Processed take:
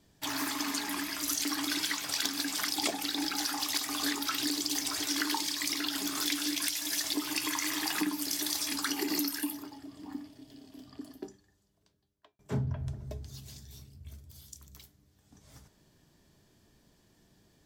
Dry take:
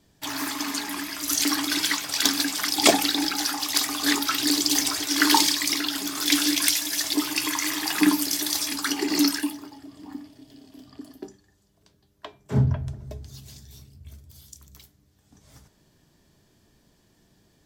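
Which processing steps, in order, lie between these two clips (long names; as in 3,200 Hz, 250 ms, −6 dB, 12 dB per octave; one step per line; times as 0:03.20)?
0:08.93–0:09.63: parametric band 13,000 Hz +12 dB 0.53 octaves
downward compressor 12 to 1, threshold −25 dBFS, peak gain reduction 14.5 dB
0:11.13–0:12.39: fade out
level −3 dB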